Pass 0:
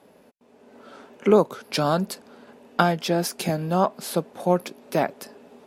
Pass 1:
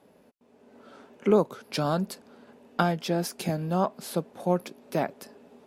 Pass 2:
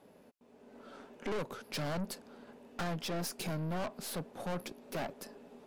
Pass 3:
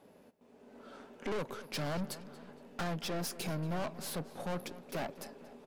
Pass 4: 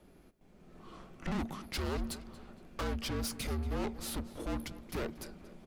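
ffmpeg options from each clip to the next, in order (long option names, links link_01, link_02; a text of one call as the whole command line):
ffmpeg -i in.wav -af "lowshelf=frequency=290:gain=4.5,volume=-6dB" out.wav
ffmpeg -i in.wav -af "aeval=exprs='(tanh(50.1*val(0)+0.4)-tanh(0.4))/50.1':channel_layout=same" out.wav
ffmpeg -i in.wav -filter_complex "[0:a]asplit=2[link_01][link_02];[link_02]adelay=232,lowpass=frequency=4400:poles=1,volume=-15.5dB,asplit=2[link_03][link_04];[link_04]adelay=232,lowpass=frequency=4400:poles=1,volume=0.51,asplit=2[link_05][link_06];[link_06]adelay=232,lowpass=frequency=4400:poles=1,volume=0.51,asplit=2[link_07][link_08];[link_08]adelay=232,lowpass=frequency=4400:poles=1,volume=0.51,asplit=2[link_09][link_10];[link_10]adelay=232,lowpass=frequency=4400:poles=1,volume=0.51[link_11];[link_01][link_03][link_05][link_07][link_09][link_11]amix=inputs=6:normalize=0" out.wav
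ffmpeg -i in.wav -af "afreqshift=-230,volume=1dB" out.wav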